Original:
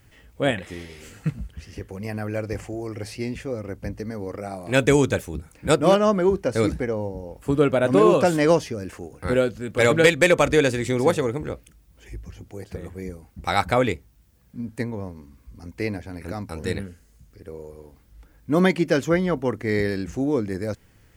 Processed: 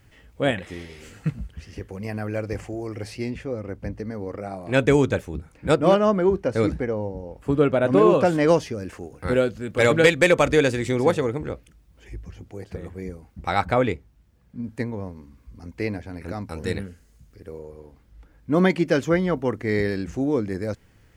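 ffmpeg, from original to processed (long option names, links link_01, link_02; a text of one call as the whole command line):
ffmpeg -i in.wav -af "asetnsamples=nb_out_samples=441:pad=0,asendcmd='3.3 lowpass f 2900;8.48 lowpass f 7300;10.96 lowpass f 4500;13.43 lowpass f 2500;14.64 lowpass f 5000;16.5 lowpass f 8800;17.59 lowpass f 3500;18.7 lowpass f 6300',lowpass=frequency=6900:poles=1" out.wav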